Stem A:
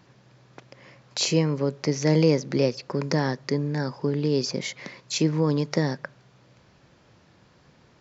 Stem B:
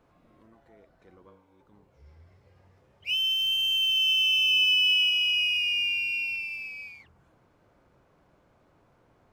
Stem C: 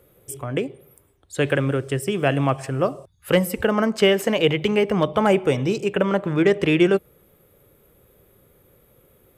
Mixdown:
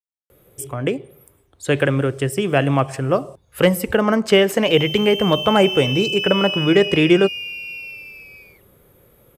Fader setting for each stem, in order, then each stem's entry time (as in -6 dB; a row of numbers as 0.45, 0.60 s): off, -2.5 dB, +3.0 dB; off, 1.55 s, 0.30 s